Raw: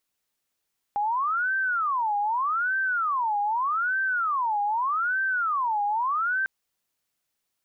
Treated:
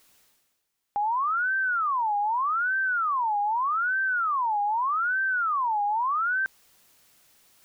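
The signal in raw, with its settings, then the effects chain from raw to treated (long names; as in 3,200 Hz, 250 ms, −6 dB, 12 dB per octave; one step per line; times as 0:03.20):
siren wail 816–1,560 Hz 0.82 per second sine −22.5 dBFS 5.50 s
reversed playback
upward compression, threshold −43 dBFS
reversed playback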